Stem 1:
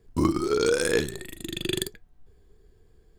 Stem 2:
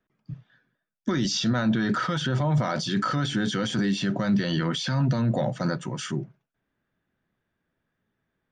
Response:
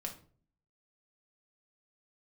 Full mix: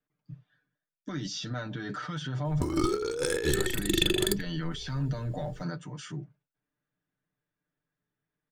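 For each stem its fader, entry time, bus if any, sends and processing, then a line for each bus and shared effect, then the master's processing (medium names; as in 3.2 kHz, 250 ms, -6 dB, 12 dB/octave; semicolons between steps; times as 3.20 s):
+2.0 dB, 2.45 s, no send, comb 2.3 ms, depth 58%
-16.0 dB, 0.00 s, no send, comb 6.7 ms, depth 77%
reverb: none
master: compressor with a negative ratio -27 dBFS, ratio -1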